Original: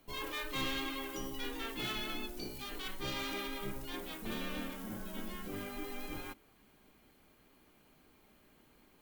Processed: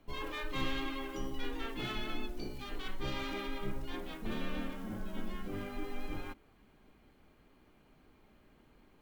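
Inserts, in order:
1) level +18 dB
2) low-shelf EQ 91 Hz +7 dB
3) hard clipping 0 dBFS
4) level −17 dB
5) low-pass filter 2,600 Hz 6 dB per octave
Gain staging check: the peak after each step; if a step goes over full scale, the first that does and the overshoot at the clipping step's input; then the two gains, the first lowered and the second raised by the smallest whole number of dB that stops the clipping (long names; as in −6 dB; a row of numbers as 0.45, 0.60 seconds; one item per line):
−7.5, −4.5, −4.5, −21.5, −22.5 dBFS
no step passes full scale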